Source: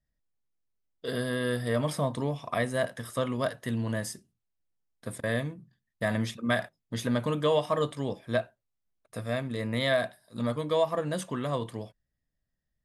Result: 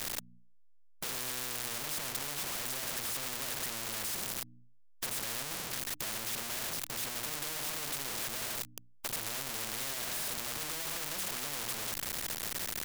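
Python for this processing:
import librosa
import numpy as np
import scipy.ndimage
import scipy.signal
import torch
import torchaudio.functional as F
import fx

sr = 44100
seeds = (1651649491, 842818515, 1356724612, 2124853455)

y = np.sign(x) * np.sqrt(np.mean(np.square(x)))
y = fx.hum_notches(y, sr, base_hz=60, count=5)
y = fx.spectral_comp(y, sr, ratio=4.0)
y = y * 10.0 ** (6.5 / 20.0)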